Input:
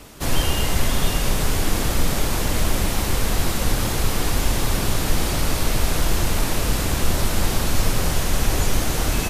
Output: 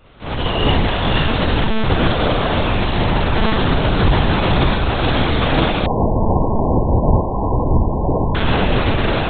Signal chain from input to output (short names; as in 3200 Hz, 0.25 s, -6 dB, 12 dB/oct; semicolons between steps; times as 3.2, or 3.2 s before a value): HPF 71 Hz 6 dB/oct; AGC gain up to 6.5 dB; flutter echo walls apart 5.5 m, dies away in 0.91 s; reverb RT60 1.1 s, pre-delay 8 ms, DRR -4.5 dB; monotone LPC vocoder at 8 kHz 220 Hz; 5.86–8.35 brick-wall FIR low-pass 1100 Hz; gain -7.5 dB